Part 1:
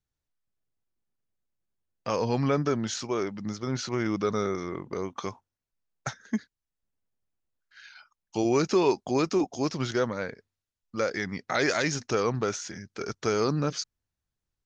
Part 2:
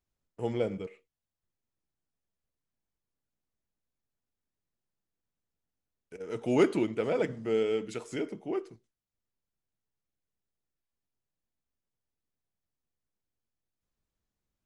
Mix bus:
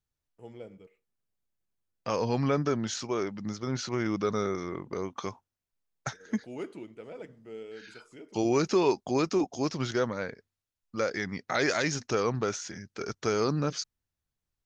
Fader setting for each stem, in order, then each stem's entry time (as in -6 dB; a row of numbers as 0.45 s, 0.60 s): -1.5 dB, -14.5 dB; 0.00 s, 0.00 s